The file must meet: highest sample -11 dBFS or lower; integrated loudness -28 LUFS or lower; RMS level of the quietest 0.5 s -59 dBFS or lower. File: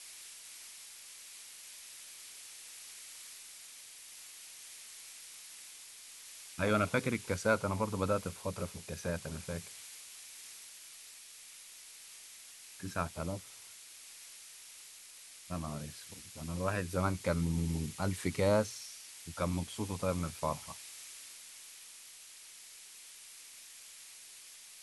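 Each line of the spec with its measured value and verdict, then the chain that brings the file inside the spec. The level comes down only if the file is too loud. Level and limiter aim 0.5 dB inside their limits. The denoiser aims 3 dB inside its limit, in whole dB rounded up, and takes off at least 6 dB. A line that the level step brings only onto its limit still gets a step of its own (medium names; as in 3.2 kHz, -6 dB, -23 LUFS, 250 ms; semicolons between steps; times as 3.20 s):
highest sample -15.0 dBFS: pass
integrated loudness -38.5 LUFS: pass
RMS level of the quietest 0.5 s -53 dBFS: fail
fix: noise reduction 9 dB, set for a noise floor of -53 dBFS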